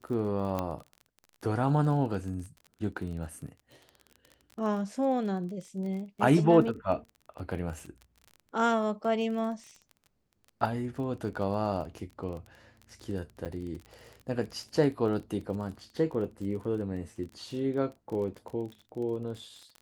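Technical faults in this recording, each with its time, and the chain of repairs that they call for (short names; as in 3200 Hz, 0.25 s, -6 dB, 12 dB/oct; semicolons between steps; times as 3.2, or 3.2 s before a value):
crackle 31/s -38 dBFS
0.59 pop -18 dBFS
13.45–13.46 gap 8.9 ms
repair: de-click; interpolate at 13.45, 8.9 ms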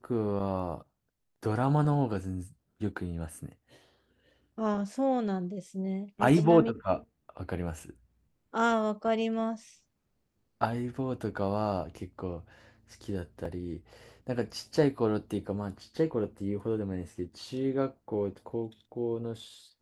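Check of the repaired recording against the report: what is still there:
0.59 pop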